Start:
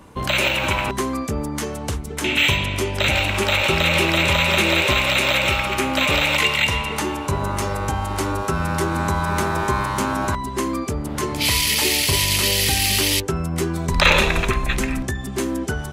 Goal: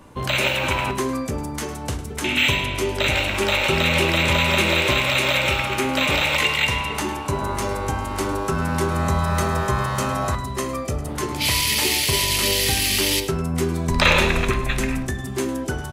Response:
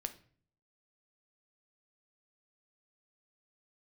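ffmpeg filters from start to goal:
-filter_complex "[0:a]asettb=1/sr,asplit=3[s0][s1][s2];[s0]atrim=end=8.904[s3];[s1]atrim=start=8.9:end=11.09,asetpts=PTS-STARTPTS,afade=t=in:d=0.004:c=qsin,afade=t=out:st=2.186:d=0.004:c=qsin,aecho=1:1:1.6:0.53,atrim=end_sample=96579[s4];[s2]atrim=start=11.086[s5];[s3][s4]acrossfade=d=0.004:c1=hsin:c2=qsin[s6];[s6][s5]acrossfade=d=0.004:c1=qsin:c2=hsin,aecho=1:1:105:0.178[s7];[1:a]atrim=start_sample=2205[s8];[s7][s8]afir=irnorm=-1:irlink=0"

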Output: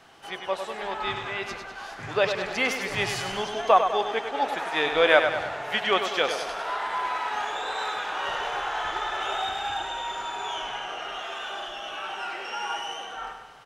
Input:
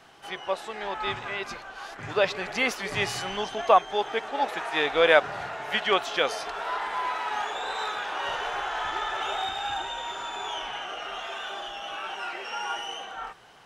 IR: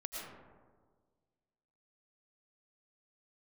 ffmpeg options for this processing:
-af "aecho=1:1:100|200|300|400|500|600:0.422|0.219|0.114|0.0593|0.0308|0.016"

